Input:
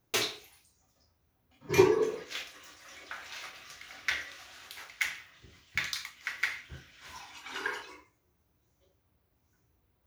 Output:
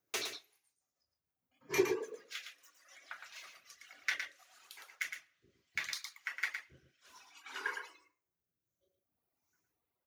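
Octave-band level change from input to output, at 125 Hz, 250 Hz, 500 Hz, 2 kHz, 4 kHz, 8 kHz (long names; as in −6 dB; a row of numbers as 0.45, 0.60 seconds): −16.5, −9.0, −9.5, −5.0, −7.0, −5.0 decibels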